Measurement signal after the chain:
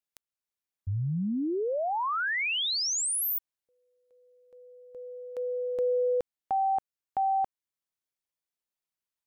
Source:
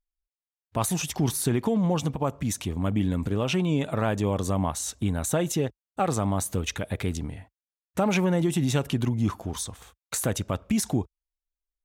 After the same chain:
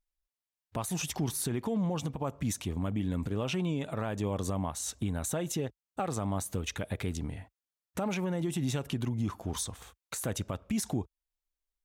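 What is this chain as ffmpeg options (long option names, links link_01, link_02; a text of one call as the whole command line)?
ffmpeg -i in.wav -af "alimiter=limit=-23dB:level=0:latency=1:release=418" out.wav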